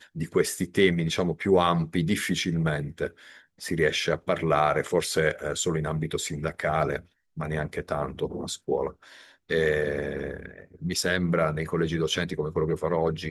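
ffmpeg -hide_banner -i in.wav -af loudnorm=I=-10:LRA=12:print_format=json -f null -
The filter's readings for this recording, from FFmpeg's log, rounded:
"input_i" : "-26.9",
"input_tp" : "-6.6",
"input_lra" : "3.7",
"input_thresh" : "-37.2",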